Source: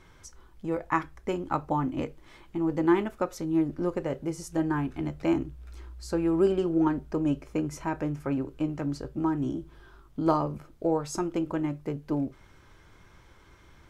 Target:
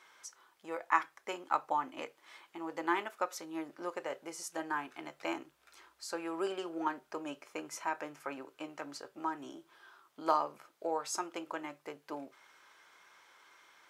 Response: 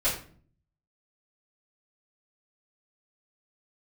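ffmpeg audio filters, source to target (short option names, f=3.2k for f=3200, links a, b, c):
-af "highpass=790"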